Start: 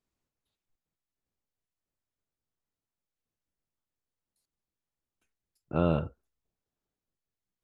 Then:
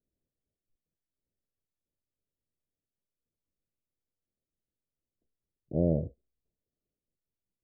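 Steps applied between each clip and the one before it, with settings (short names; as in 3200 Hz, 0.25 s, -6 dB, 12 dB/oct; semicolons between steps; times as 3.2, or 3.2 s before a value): steep low-pass 640 Hz 48 dB/oct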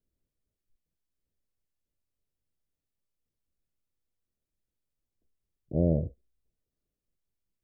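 low shelf 78 Hz +9.5 dB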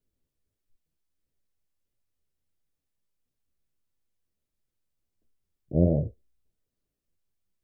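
flange 1.5 Hz, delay 6.6 ms, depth 9.2 ms, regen +55%; gain +6 dB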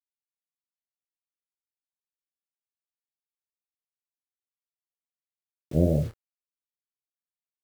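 bit-crush 8-bit; doubler 26 ms -10 dB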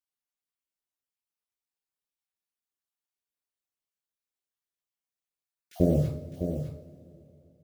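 random spectral dropouts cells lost 23%; echo 0.607 s -8.5 dB; two-slope reverb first 0.52 s, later 3.3 s, from -16 dB, DRR 5 dB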